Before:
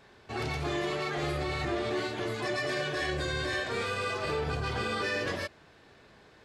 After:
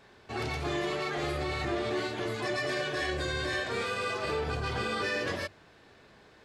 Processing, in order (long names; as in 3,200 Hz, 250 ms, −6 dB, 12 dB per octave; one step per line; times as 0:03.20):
mains-hum notches 50/100/150 Hz